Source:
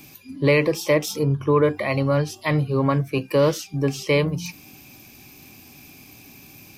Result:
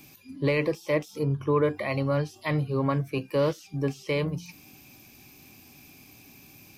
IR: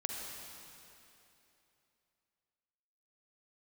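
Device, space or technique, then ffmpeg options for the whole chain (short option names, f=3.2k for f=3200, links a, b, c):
de-esser from a sidechain: -filter_complex "[0:a]asplit=2[a][b];[b]highpass=f=5.5k:w=0.5412,highpass=f=5.5k:w=1.3066,apad=whole_len=298994[c];[a][c]sidechaincompress=threshold=-41dB:ratio=12:attack=0.61:release=39,volume=-5.5dB"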